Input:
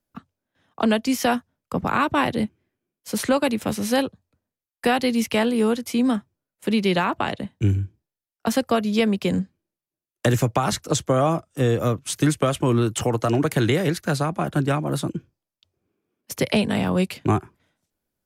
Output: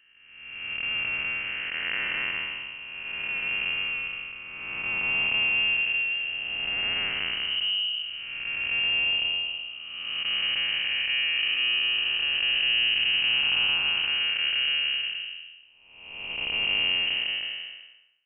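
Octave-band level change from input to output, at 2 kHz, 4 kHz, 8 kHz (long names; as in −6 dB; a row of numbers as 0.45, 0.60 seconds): +6.0 dB, +10.5 dB, below −40 dB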